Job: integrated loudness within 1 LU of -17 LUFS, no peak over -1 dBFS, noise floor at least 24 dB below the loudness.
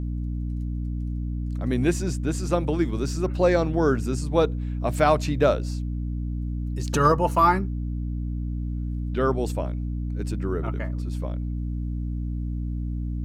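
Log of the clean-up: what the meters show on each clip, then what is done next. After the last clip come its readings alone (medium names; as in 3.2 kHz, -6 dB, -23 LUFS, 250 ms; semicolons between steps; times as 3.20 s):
hum 60 Hz; highest harmonic 300 Hz; hum level -26 dBFS; loudness -26.0 LUFS; peak level -7.0 dBFS; loudness target -17.0 LUFS
-> hum notches 60/120/180/240/300 Hz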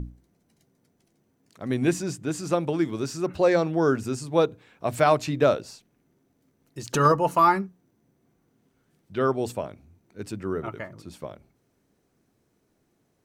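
hum not found; loudness -24.5 LUFS; peak level -6.5 dBFS; loudness target -17.0 LUFS
-> trim +7.5 dB; peak limiter -1 dBFS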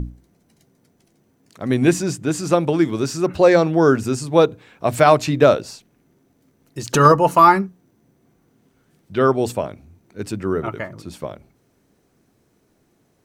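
loudness -17.5 LUFS; peak level -1.0 dBFS; noise floor -63 dBFS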